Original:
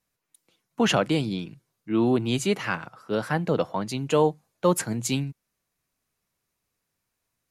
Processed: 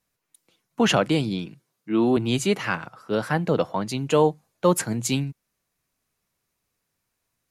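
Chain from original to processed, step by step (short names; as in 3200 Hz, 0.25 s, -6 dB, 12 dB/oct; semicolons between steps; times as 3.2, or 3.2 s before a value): 1.47–2.17 HPF 150 Hz; gain +2 dB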